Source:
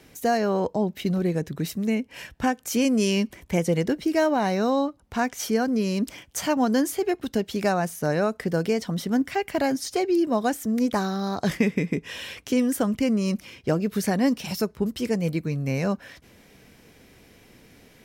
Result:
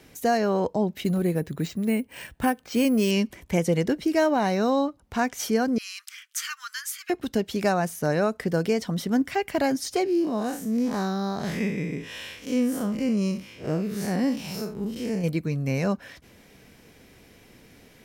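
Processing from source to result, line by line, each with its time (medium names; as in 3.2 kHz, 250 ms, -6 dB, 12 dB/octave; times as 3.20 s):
1.04–3.11 s: careless resampling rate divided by 4×, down filtered, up hold
5.78–7.10 s: steep high-pass 1.2 kHz 72 dB/octave
10.04–15.24 s: spectral blur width 114 ms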